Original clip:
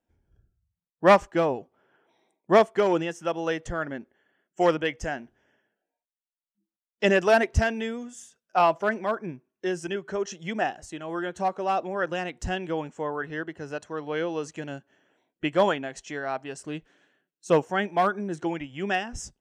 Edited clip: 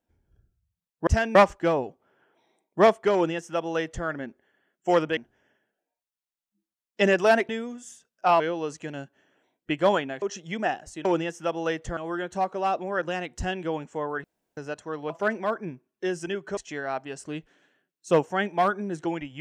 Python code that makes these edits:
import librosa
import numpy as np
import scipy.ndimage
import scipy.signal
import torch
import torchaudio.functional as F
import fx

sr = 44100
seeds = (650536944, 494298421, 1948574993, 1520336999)

y = fx.edit(x, sr, fx.duplicate(start_s=2.86, length_s=0.92, to_s=11.01),
    fx.cut(start_s=4.89, length_s=0.31),
    fx.move(start_s=7.52, length_s=0.28, to_s=1.07),
    fx.swap(start_s=8.71, length_s=1.47, other_s=14.14, other_length_s=1.82),
    fx.room_tone_fill(start_s=13.28, length_s=0.33), tone=tone)